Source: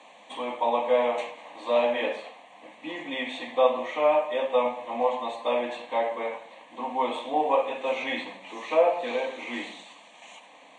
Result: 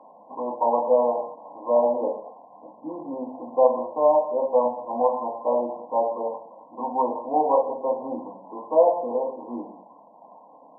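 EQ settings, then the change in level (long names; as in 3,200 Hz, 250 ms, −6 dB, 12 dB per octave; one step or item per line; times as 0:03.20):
linear-phase brick-wall low-pass 1,100 Hz
+3.5 dB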